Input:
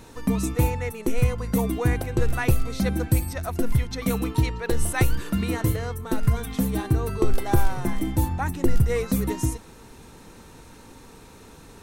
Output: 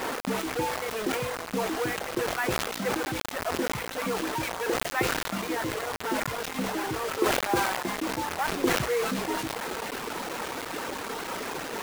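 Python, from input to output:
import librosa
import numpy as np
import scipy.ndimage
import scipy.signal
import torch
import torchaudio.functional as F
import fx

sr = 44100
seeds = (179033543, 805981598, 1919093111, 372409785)

y = fx.delta_mod(x, sr, bps=64000, step_db=-20.5)
y = scipy.signal.sosfilt(scipy.signal.butter(2, 340.0, 'highpass', fs=sr, output='sos'), y)
y = y + 10.0 ** (-19.0 / 20.0) * np.pad(y, (int(1062 * sr / 1000.0), 0))[:len(y)]
y = fx.dereverb_blind(y, sr, rt60_s=1.7)
y = scipy.signal.sosfilt(scipy.signal.butter(2, 2100.0, 'lowpass', fs=sr, output='sos'), y)
y = fx.rev_schroeder(y, sr, rt60_s=1.8, comb_ms=33, drr_db=14.5)
y = fx.quant_dither(y, sr, seeds[0], bits=6, dither='none')
y = fx.sustainer(y, sr, db_per_s=40.0)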